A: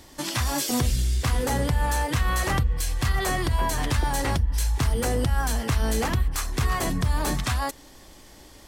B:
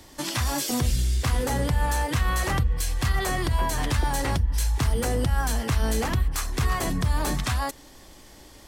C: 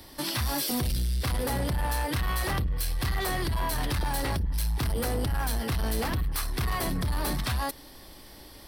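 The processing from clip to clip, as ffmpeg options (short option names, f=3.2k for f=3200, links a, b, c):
-filter_complex "[0:a]acrossover=split=170[a][b];[b]acompressor=threshold=-23dB:ratio=6[c];[a][c]amix=inputs=2:normalize=0"
-af "aexciter=amount=1.2:drive=1.7:freq=3.8k,asoftclip=type=tanh:threshold=-23.5dB"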